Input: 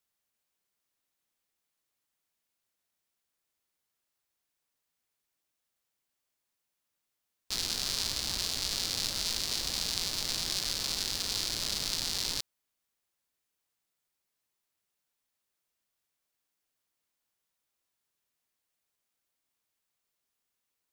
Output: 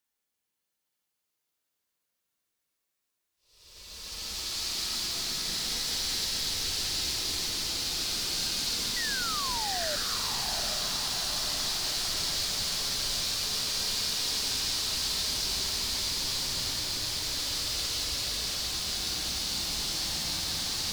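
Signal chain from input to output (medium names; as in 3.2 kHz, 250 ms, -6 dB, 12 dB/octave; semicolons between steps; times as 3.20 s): Paulstretch 20×, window 0.10 s, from 7.29 s; painted sound fall, 8.96–9.96 s, 570–2000 Hz -36 dBFS; echo that smears into a reverb 803 ms, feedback 65%, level -5 dB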